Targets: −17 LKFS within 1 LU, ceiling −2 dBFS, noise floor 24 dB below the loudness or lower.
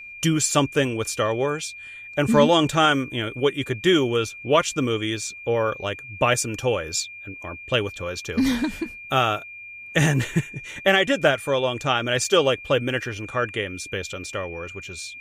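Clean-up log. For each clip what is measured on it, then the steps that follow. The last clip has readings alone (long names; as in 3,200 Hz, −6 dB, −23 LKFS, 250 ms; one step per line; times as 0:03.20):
interfering tone 2,400 Hz; level of the tone −37 dBFS; integrated loudness −22.5 LKFS; sample peak −5.0 dBFS; target loudness −17.0 LKFS
→ notch filter 2,400 Hz, Q 30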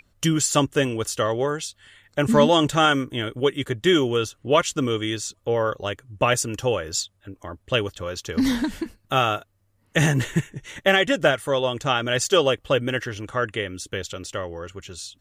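interfering tone none found; integrated loudness −23.0 LKFS; sample peak −5.5 dBFS; target loudness −17.0 LKFS
→ level +6 dB
brickwall limiter −2 dBFS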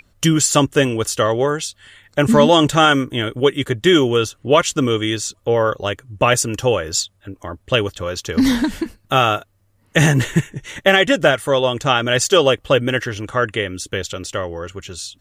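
integrated loudness −17.0 LKFS; sample peak −2.0 dBFS; background noise floor −60 dBFS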